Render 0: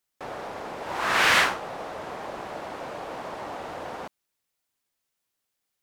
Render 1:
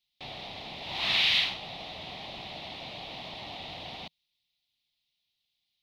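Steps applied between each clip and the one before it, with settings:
drawn EQ curve 160 Hz 0 dB, 500 Hz −15 dB, 930 Hz +2 dB, 1,600 Hz −6 dB, 3,800 Hz +13 dB, 7,500 Hz −15 dB, 15,000 Hz −10 dB
downward compressor 6 to 1, threshold −21 dBFS, peak gain reduction 8.5 dB
flat-topped bell 1,200 Hz −13 dB 1.1 octaves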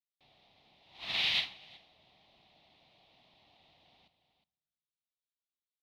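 single-tap delay 362 ms −11 dB
on a send at −20 dB: convolution reverb RT60 1.2 s, pre-delay 3 ms
on the sum: expander for the loud parts 2.5 to 1, over −37 dBFS
level −4.5 dB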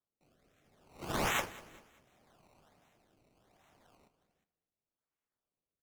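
sample-and-hold swept by an LFO 18×, swing 100% 1.3 Hz
rotating-speaker cabinet horn 0.7 Hz
repeating echo 196 ms, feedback 41%, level −19.5 dB

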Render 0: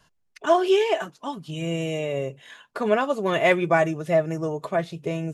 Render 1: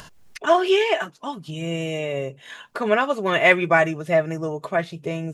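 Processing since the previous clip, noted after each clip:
upward compression, threshold −29 dBFS
dynamic equaliser 2,000 Hz, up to +7 dB, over −36 dBFS, Q 0.73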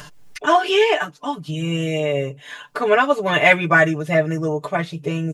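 comb filter 6.8 ms, depth 94%
level +1 dB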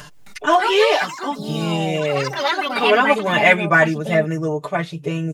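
delay with pitch and tempo change per echo 264 ms, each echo +5 semitones, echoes 3, each echo −6 dB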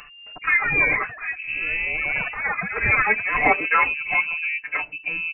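voice inversion scrambler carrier 2,800 Hz
level −4.5 dB

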